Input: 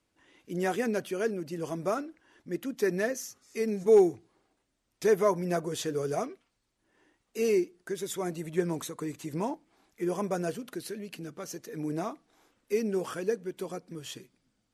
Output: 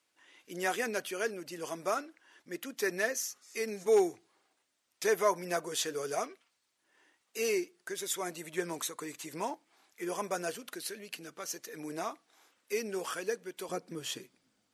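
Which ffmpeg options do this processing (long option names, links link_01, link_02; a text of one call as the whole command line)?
ffmpeg -i in.wav -af "asetnsamples=nb_out_samples=441:pad=0,asendcmd='13.69 highpass f 340',highpass=frequency=1200:poles=1,volume=4dB" out.wav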